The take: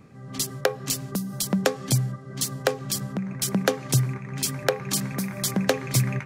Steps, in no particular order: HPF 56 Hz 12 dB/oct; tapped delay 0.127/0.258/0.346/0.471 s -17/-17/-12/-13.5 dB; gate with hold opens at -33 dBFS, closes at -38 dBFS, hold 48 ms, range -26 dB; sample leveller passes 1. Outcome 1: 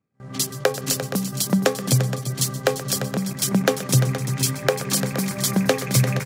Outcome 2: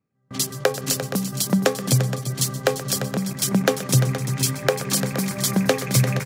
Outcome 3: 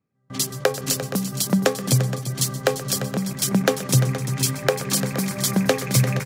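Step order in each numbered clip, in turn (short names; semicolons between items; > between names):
tapped delay > sample leveller > gate with hold > HPF; tapped delay > gate with hold > sample leveller > HPF; gate with hold > HPF > sample leveller > tapped delay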